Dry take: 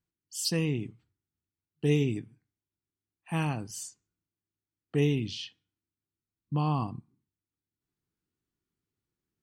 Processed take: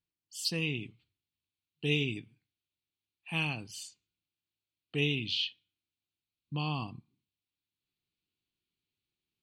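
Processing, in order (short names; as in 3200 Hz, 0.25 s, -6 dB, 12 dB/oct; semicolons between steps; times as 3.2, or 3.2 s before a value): band shelf 3200 Hz +8 dB 1.2 oct, from 0.61 s +14.5 dB; gain -6.5 dB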